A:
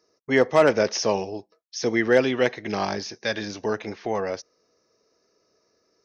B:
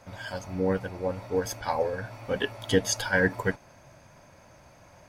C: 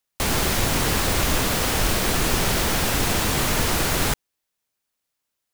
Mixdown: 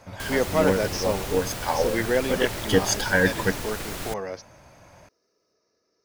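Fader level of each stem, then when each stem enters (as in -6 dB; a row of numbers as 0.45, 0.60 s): -5.0, +3.0, -12.0 dB; 0.00, 0.00, 0.00 s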